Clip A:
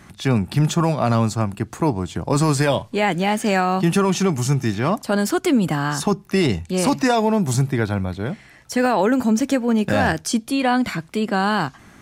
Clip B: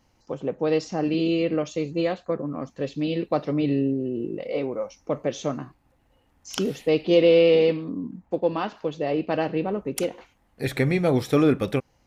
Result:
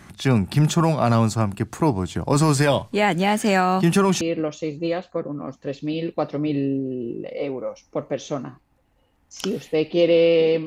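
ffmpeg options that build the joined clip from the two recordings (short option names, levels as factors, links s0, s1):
-filter_complex "[0:a]apad=whole_dur=10.66,atrim=end=10.66,atrim=end=4.212[s0];[1:a]atrim=start=1.348:end=7.8[s1];[s0][s1]acrossfade=d=0.004:c1=hsin:c2=hsin"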